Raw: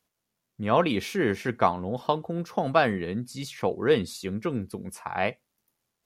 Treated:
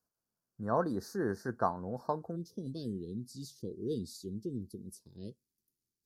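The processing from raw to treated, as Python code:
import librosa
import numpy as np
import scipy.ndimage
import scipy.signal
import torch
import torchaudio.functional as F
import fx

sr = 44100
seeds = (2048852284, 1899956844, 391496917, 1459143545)

y = fx.ellip_bandstop(x, sr, low_hz=fx.steps((0.0, 1600.0), (2.35, 380.0)), high_hz=4500.0, order=3, stop_db=40)
y = F.gain(torch.from_numpy(y), -8.0).numpy()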